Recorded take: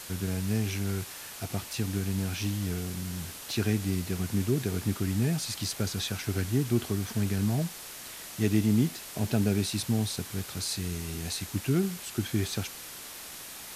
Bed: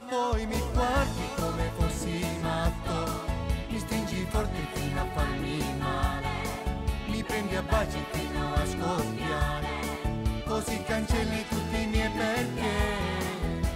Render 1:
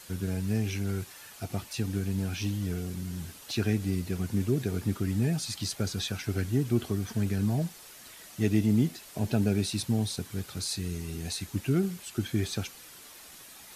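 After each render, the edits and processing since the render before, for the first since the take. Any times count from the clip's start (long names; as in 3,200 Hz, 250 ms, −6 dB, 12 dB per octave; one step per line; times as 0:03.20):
broadband denoise 8 dB, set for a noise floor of −43 dBFS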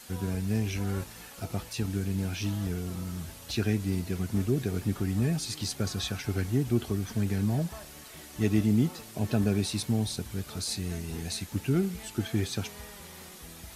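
mix in bed −19 dB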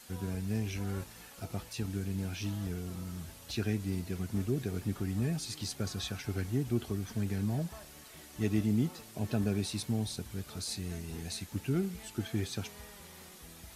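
level −5 dB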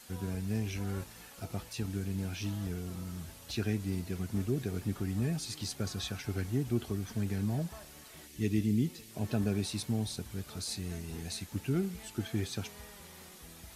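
0:08.27–0:09.11: flat-topped bell 910 Hz −12.5 dB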